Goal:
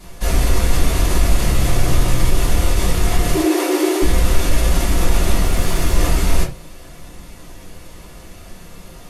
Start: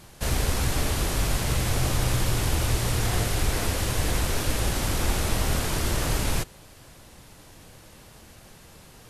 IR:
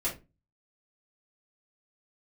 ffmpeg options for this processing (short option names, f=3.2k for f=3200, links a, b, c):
-filter_complex "[0:a]alimiter=limit=-19.5dB:level=0:latency=1:release=18,asettb=1/sr,asplit=3[a][b][c];[a]atrim=end=3.334[d];[b]atrim=start=3.33:end=4.02,asetpts=PTS-STARTPTS,afade=t=in:d=0.004:c=qsin,afade=t=out:st=0.686:d=0.004:c=qsin,afreqshift=290[e];[c]atrim=start=4.016[f];[d][e]acrossfade=d=0.004:c1=hsin:c2=qsin[g];[g][f]acrossfade=d=0.004:c1=qsin:c2=hsin,asettb=1/sr,asplit=3[h][i][j];[h]atrim=end=5.454[k];[i]atrim=start=5.45:end=5.96,asetpts=PTS-STARTPTS,afade=t=in:d=0.004:c=qsin,afade=t=out:st=0.506:d=0.004:c=qsin,aeval=exprs='sgn(val(0))*max(abs(val(0))-0.00473,0)':c=same[l];[j]atrim=start=5.956[m];[k][l]acrossfade=d=0.004:c1=hsin:c2=qsin[n];[n][m]acrossfade=d=0.004:c1=qsin:c2=hsin[o];[1:a]atrim=start_sample=2205,afade=t=out:st=0.18:d=0.01,atrim=end_sample=8379[p];[o][p]afir=irnorm=-1:irlink=0,volume=3dB"